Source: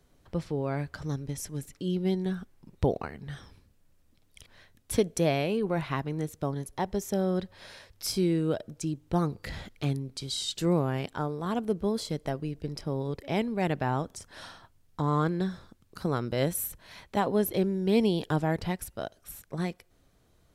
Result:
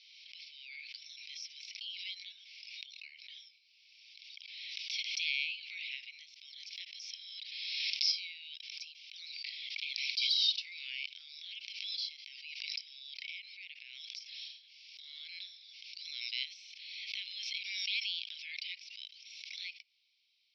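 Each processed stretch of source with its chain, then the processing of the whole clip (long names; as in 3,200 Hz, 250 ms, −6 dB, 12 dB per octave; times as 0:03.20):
0:11.66–0:15.01: high-pass filter 310 Hz + downward compressor, threshold −34 dBFS
whole clip: Chebyshev band-pass filter 2,200–5,500 Hz, order 5; background raised ahead of every attack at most 27 dB per second; level +4 dB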